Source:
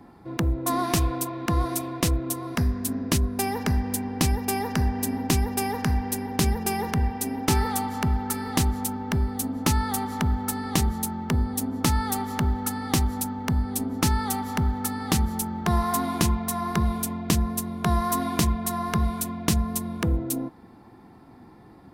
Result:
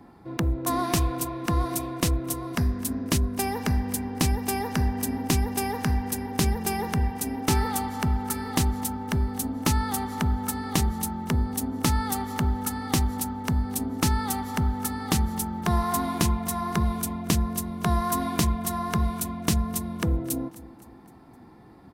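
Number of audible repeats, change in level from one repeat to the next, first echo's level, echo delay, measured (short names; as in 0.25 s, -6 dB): 3, -6.5 dB, -19.0 dB, 0.258 s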